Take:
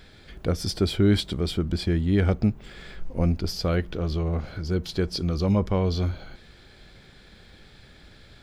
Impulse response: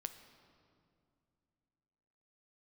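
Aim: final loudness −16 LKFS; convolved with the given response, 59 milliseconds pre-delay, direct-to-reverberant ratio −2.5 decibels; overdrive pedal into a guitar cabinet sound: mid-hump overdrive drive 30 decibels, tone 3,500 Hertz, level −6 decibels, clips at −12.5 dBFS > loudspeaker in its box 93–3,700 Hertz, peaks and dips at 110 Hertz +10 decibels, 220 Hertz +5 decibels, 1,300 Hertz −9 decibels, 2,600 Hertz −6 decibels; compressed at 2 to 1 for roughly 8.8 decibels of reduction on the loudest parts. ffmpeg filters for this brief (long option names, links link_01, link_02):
-filter_complex "[0:a]acompressor=threshold=-33dB:ratio=2,asplit=2[link_01][link_02];[1:a]atrim=start_sample=2205,adelay=59[link_03];[link_02][link_03]afir=irnorm=-1:irlink=0,volume=5.5dB[link_04];[link_01][link_04]amix=inputs=2:normalize=0,asplit=2[link_05][link_06];[link_06]highpass=frequency=720:poles=1,volume=30dB,asoftclip=type=tanh:threshold=-12.5dB[link_07];[link_05][link_07]amix=inputs=2:normalize=0,lowpass=frequency=3500:poles=1,volume=-6dB,highpass=93,equalizer=frequency=110:width_type=q:width=4:gain=10,equalizer=frequency=220:width_type=q:width=4:gain=5,equalizer=frequency=1300:width_type=q:width=4:gain=-9,equalizer=frequency=2600:width_type=q:width=4:gain=-6,lowpass=frequency=3700:width=0.5412,lowpass=frequency=3700:width=1.3066,volume=6.5dB"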